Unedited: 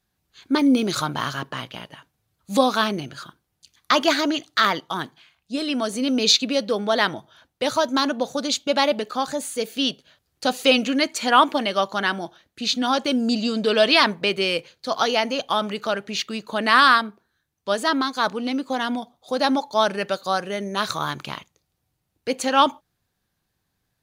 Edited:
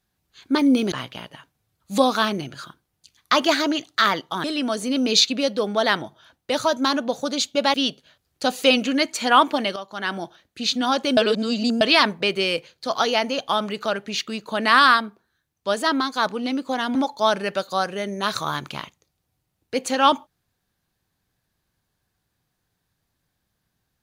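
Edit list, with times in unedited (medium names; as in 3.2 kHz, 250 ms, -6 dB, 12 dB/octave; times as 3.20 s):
0.92–1.51 s: delete
5.03–5.56 s: delete
8.86–9.75 s: delete
11.77–12.18 s: fade in quadratic, from -13 dB
13.18–13.82 s: reverse
18.96–19.49 s: delete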